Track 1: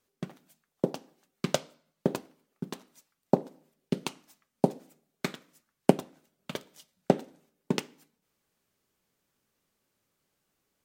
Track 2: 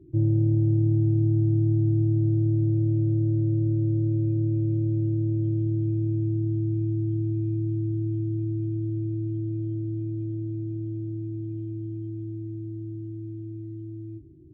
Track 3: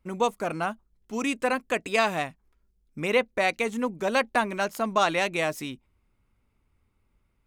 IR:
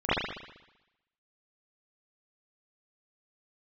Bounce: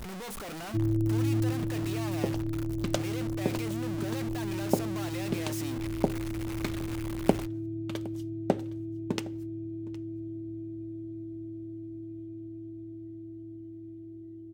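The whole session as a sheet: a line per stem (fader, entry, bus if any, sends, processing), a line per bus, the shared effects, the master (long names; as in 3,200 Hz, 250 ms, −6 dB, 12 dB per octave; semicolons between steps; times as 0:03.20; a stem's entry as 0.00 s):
−3.5 dB, 1.40 s, no send, echo send −21 dB, noise gate −59 dBFS, range −12 dB
−6.5 dB, 0.60 s, no send, echo send −5.5 dB, elliptic band-stop filter 670–1,800 Hz; comb filter 3 ms, depth 90%
−10.5 dB, 0.00 s, no send, no echo send, sign of each sample alone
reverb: not used
echo: single-tap delay 763 ms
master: no processing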